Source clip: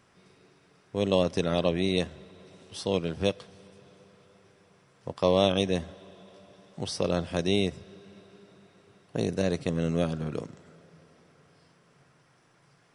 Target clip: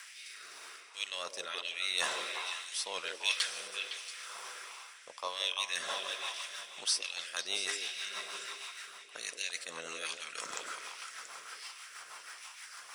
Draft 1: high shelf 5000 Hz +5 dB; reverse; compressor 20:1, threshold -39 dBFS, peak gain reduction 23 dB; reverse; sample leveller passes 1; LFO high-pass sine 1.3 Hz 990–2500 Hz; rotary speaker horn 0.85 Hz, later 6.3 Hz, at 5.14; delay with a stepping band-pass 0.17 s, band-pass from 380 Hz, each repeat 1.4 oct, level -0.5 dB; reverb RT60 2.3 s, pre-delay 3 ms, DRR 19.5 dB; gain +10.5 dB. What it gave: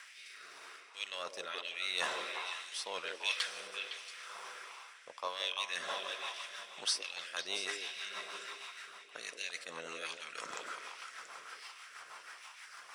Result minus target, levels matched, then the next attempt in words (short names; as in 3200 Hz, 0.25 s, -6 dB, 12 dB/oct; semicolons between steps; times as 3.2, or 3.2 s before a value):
8000 Hz band -3.5 dB
high shelf 5000 Hz +16.5 dB; reverse; compressor 20:1, threshold -39 dBFS, peak gain reduction 24 dB; reverse; sample leveller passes 1; LFO high-pass sine 1.3 Hz 990–2500 Hz; rotary speaker horn 0.85 Hz, later 6.3 Hz, at 5.14; delay with a stepping band-pass 0.17 s, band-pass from 380 Hz, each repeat 1.4 oct, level -0.5 dB; reverb RT60 2.3 s, pre-delay 3 ms, DRR 19.5 dB; gain +10.5 dB